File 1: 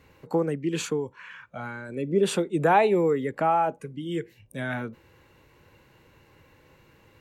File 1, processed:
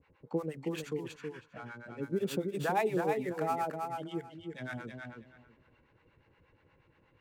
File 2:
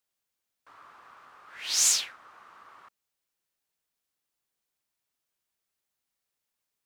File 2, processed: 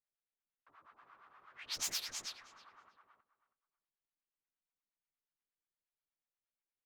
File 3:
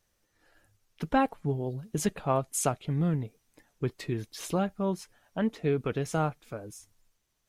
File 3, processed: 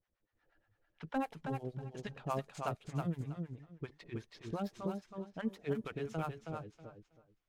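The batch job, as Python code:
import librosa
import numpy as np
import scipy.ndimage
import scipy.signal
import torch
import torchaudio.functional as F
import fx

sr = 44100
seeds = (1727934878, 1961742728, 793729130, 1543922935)

p1 = fx.dead_time(x, sr, dead_ms=0.051)
p2 = fx.harmonic_tremolo(p1, sr, hz=8.4, depth_pct=100, crossover_hz=630.0)
p3 = p2 + fx.echo_feedback(p2, sr, ms=321, feedback_pct=20, wet_db=-5.0, dry=0)
p4 = fx.env_lowpass(p3, sr, base_hz=2700.0, full_db=-27.0)
y = F.gain(torch.from_numpy(p4), -5.5).numpy()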